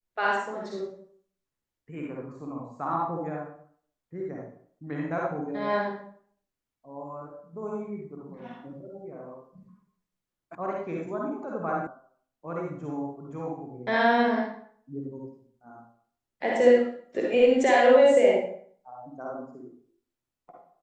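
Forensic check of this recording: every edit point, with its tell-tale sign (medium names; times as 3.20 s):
10.55 s: sound stops dead
11.87 s: sound stops dead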